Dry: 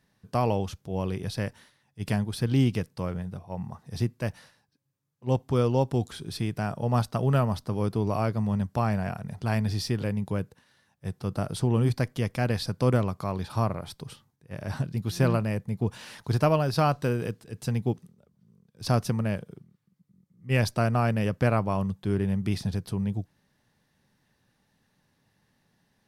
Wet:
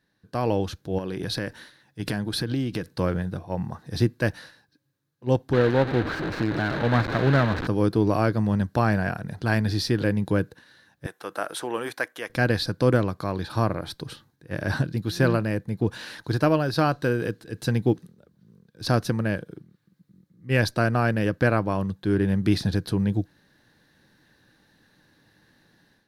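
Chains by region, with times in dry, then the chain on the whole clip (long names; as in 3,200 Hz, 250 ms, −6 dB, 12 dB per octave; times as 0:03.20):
0:00.98–0:02.93: parametric band 93 Hz −7.5 dB 0.25 octaves + downward compressor 4 to 1, threshold −32 dBFS
0:05.53–0:07.67: linear delta modulator 16 kbit/s, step −26 dBFS + windowed peak hold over 9 samples
0:11.06–0:12.30: high-pass filter 720 Hz + parametric band 4,500 Hz −11.5 dB 0.54 octaves
whole clip: thirty-one-band graphic EQ 315 Hz +10 dB, 500 Hz +4 dB, 1,600 Hz +10 dB, 4,000 Hz +8 dB, 8,000 Hz −3 dB; automatic gain control gain up to 12 dB; level −6 dB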